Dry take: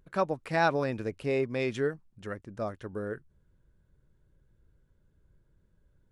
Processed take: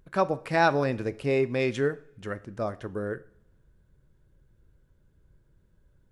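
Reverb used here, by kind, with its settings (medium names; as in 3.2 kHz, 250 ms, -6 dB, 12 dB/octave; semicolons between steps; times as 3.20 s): two-slope reverb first 0.5 s, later 1.9 s, from -25 dB, DRR 14 dB; trim +3.5 dB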